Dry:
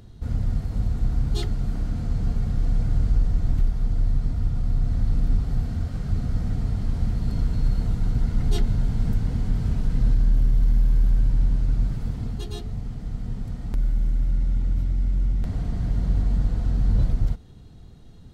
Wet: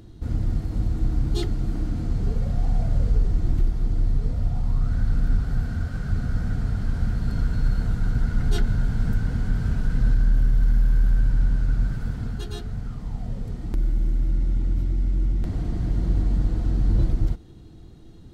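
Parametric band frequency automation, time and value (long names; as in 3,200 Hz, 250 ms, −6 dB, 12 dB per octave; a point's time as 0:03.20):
parametric band +13 dB 0.27 octaves
0:02.16 320 Hz
0:02.68 830 Hz
0:03.36 340 Hz
0:04.10 340 Hz
0:04.94 1,500 Hz
0:12.85 1,500 Hz
0:13.62 330 Hz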